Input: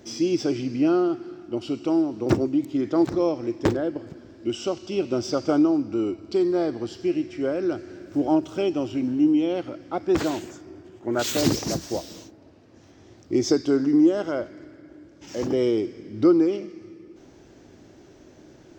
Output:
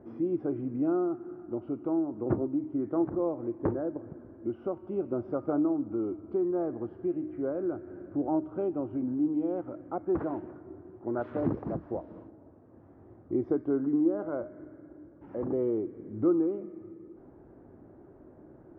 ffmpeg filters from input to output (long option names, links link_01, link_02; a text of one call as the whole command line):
ffmpeg -i in.wav -filter_complex "[0:a]lowpass=frequency=1300:width=0.5412,lowpass=frequency=1300:width=1.3066,bandreject=frequency=307.3:width_type=h:width=4,bandreject=frequency=614.6:width_type=h:width=4,bandreject=frequency=921.9:width_type=h:width=4,bandreject=frequency=1229.2:width_type=h:width=4,bandreject=frequency=1536.5:width_type=h:width=4,bandreject=frequency=1843.8:width_type=h:width=4,bandreject=frequency=2151.1:width_type=h:width=4,bandreject=frequency=2458.4:width_type=h:width=4,bandreject=frequency=2765.7:width_type=h:width=4,bandreject=frequency=3073:width_type=h:width=4,bandreject=frequency=3380.3:width_type=h:width=4,bandreject=frequency=3687.6:width_type=h:width=4,bandreject=frequency=3994.9:width_type=h:width=4,bandreject=frequency=4302.2:width_type=h:width=4,bandreject=frequency=4609.5:width_type=h:width=4,bandreject=frequency=4916.8:width_type=h:width=4,bandreject=frequency=5224.1:width_type=h:width=4,bandreject=frequency=5531.4:width_type=h:width=4,bandreject=frequency=5838.7:width_type=h:width=4,bandreject=frequency=6146:width_type=h:width=4,bandreject=frequency=6453.3:width_type=h:width=4,bandreject=frequency=6760.6:width_type=h:width=4,bandreject=frequency=7067.9:width_type=h:width=4,bandreject=frequency=7375.2:width_type=h:width=4,bandreject=frequency=7682.5:width_type=h:width=4,bandreject=frequency=7989.8:width_type=h:width=4,bandreject=frequency=8297.1:width_type=h:width=4,bandreject=frequency=8604.4:width_type=h:width=4,bandreject=frequency=8911.7:width_type=h:width=4,bandreject=frequency=9219:width_type=h:width=4,bandreject=frequency=9526.3:width_type=h:width=4,bandreject=frequency=9833.6:width_type=h:width=4,bandreject=frequency=10140.9:width_type=h:width=4,bandreject=frequency=10448.2:width_type=h:width=4,bandreject=frequency=10755.5:width_type=h:width=4,bandreject=frequency=11062.8:width_type=h:width=4,asplit=2[link_01][link_02];[link_02]acompressor=threshold=-32dB:ratio=6,volume=0.5dB[link_03];[link_01][link_03]amix=inputs=2:normalize=0,volume=-9dB" out.wav